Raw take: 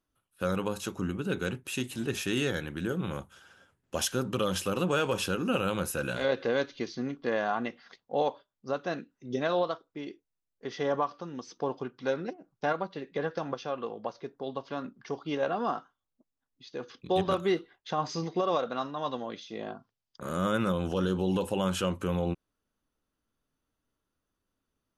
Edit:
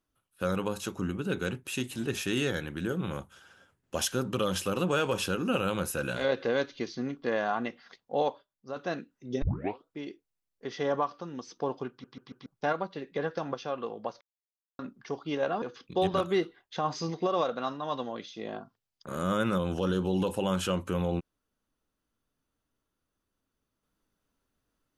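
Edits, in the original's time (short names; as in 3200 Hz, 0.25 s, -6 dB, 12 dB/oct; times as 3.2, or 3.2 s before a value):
8.28–8.76 fade out quadratic, to -6.5 dB
9.42 tape start 0.43 s
11.9 stutter in place 0.14 s, 4 plays
14.21–14.79 mute
15.62–16.76 cut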